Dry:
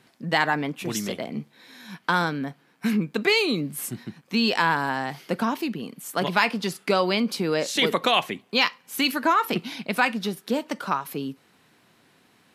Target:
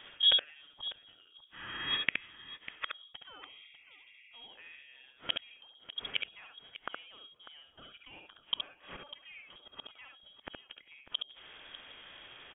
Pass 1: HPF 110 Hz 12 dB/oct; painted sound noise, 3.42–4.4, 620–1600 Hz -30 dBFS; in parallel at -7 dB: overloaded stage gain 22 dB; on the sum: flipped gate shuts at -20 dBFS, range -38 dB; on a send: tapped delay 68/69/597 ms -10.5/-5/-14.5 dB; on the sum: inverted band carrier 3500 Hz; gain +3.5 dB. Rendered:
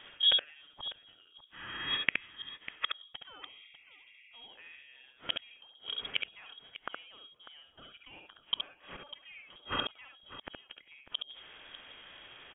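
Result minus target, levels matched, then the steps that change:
125 Hz band +4.0 dB
change: HPF 30 Hz 12 dB/oct

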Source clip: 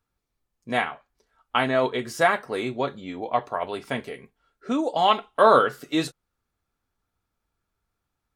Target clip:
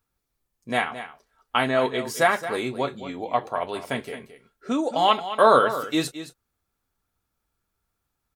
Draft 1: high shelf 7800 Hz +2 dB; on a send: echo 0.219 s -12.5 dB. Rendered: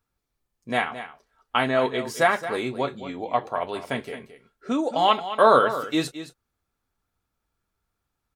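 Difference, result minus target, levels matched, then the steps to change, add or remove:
8000 Hz band -3.0 dB
change: high shelf 7800 Hz +8.5 dB

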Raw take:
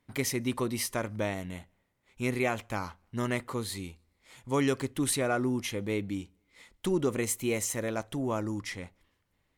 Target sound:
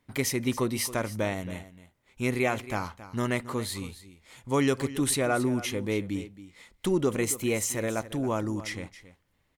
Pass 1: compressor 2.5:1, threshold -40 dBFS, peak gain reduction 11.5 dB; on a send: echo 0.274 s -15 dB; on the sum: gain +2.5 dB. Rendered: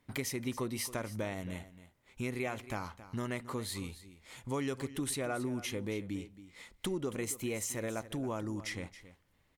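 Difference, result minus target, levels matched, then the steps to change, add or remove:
compressor: peak gain reduction +11.5 dB
remove: compressor 2.5:1, threshold -40 dBFS, peak gain reduction 11.5 dB

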